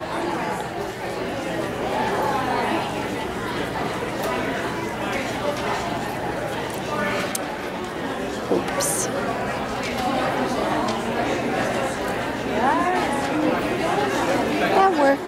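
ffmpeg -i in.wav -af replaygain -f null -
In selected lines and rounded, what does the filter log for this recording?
track_gain = +5.4 dB
track_peak = 0.335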